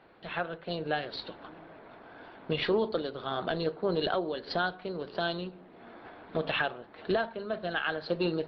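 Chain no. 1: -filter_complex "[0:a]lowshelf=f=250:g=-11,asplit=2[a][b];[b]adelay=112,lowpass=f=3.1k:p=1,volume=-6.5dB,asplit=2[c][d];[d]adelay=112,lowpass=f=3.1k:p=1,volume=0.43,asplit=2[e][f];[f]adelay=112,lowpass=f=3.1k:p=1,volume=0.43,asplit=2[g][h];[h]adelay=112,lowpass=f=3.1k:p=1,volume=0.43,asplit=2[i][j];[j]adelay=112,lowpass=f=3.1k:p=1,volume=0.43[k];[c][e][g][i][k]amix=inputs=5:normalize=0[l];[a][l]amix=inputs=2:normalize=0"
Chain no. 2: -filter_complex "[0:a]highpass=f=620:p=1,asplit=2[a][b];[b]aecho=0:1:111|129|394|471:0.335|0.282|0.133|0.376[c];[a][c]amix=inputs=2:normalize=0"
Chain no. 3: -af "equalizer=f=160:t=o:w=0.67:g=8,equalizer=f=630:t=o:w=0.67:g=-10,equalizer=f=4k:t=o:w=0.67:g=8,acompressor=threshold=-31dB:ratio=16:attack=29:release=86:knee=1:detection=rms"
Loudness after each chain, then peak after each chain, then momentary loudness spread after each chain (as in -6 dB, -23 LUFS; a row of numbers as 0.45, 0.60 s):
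-33.5, -34.5, -35.0 LUFS; -16.5, -17.0, -18.0 dBFS; 19, 16, 17 LU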